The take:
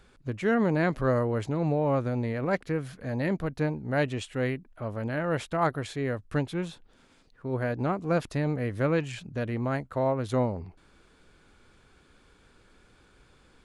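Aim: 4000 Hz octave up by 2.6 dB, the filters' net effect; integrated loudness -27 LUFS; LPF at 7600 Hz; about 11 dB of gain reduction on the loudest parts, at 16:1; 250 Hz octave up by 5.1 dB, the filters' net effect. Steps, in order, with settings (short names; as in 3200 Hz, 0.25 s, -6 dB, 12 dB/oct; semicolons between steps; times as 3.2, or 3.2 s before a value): LPF 7600 Hz; bell 250 Hz +6.5 dB; bell 4000 Hz +3.5 dB; compressor 16:1, threshold -27 dBFS; gain +6 dB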